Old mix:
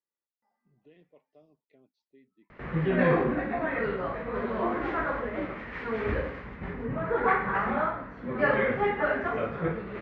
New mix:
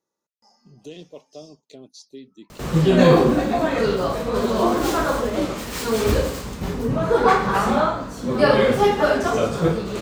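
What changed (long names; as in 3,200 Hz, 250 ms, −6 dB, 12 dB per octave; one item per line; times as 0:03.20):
speech +8.5 dB
master: remove transistor ladder low-pass 2,200 Hz, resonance 60%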